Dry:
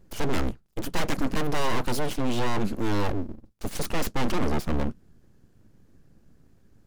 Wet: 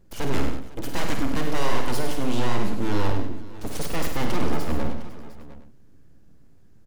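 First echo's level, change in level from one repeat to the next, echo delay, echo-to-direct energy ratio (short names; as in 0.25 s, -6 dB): -8.0 dB, no steady repeat, 51 ms, -3.0 dB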